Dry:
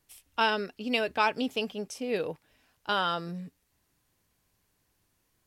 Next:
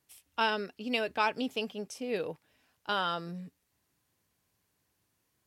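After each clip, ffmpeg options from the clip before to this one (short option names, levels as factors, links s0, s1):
-af "highpass=71,volume=0.708"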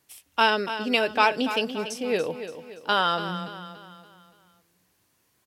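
-filter_complex "[0:a]lowshelf=f=170:g=-5.5,asplit=2[s0][s1];[s1]aecho=0:1:286|572|858|1144|1430:0.282|0.124|0.0546|0.024|0.0106[s2];[s0][s2]amix=inputs=2:normalize=0,volume=2.66"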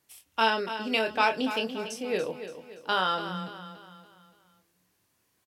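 -filter_complex "[0:a]asplit=2[s0][s1];[s1]adelay=27,volume=0.447[s2];[s0][s2]amix=inputs=2:normalize=0,volume=0.596"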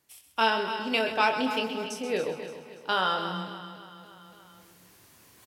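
-af "areverse,acompressor=mode=upward:threshold=0.00708:ratio=2.5,areverse,aecho=1:1:130|260|390|520|650|780:0.316|0.164|0.0855|0.0445|0.0231|0.012"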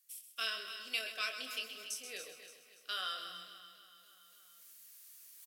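-af "asuperstop=centerf=900:order=12:qfactor=3.2,aderivative"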